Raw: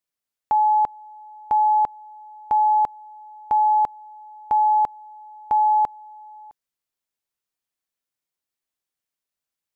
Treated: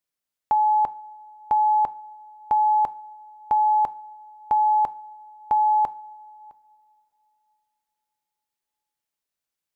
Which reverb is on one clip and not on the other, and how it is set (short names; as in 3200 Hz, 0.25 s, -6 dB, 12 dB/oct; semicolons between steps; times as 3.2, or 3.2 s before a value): two-slope reverb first 0.42 s, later 3.5 s, from -21 dB, DRR 15.5 dB